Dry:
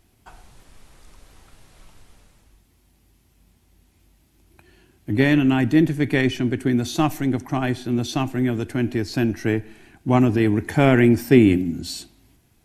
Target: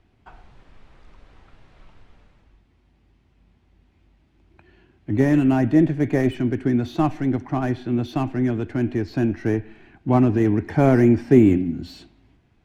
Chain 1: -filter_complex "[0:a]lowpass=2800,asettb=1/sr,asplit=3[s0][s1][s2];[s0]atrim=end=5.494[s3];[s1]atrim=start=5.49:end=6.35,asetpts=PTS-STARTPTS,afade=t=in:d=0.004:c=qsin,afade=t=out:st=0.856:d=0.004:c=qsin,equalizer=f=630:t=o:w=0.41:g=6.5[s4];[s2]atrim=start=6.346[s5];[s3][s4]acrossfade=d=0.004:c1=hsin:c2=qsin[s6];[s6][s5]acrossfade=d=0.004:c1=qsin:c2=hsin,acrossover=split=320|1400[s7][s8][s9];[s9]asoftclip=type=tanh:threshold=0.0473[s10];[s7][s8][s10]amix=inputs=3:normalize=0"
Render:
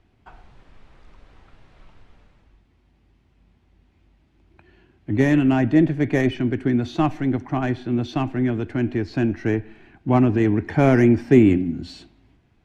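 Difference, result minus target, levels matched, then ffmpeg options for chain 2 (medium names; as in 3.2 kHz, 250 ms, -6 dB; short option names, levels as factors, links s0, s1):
saturation: distortion -7 dB
-filter_complex "[0:a]lowpass=2800,asettb=1/sr,asplit=3[s0][s1][s2];[s0]atrim=end=5.494[s3];[s1]atrim=start=5.49:end=6.35,asetpts=PTS-STARTPTS,afade=t=in:d=0.004:c=qsin,afade=t=out:st=0.856:d=0.004:c=qsin,equalizer=f=630:t=o:w=0.41:g=6.5[s4];[s2]atrim=start=6.346[s5];[s3][s4]acrossfade=d=0.004:c1=hsin:c2=qsin[s6];[s6][s5]acrossfade=d=0.004:c1=qsin:c2=hsin,acrossover=split=320|1400[s7][s8][s9];[s9]asoftclip=type=tanh:threshold=0.0126[s10];[s7][s8][s10]amix=inputs=3:normalize=0"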